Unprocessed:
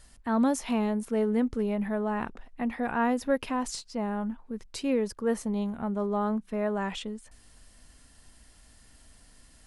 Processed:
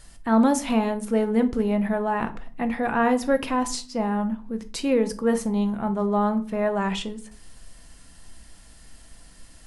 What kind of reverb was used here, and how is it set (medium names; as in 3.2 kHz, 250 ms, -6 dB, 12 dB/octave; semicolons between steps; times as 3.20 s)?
simulated room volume 350 m³, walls furnished, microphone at 0.75 m; trim +5.5 dB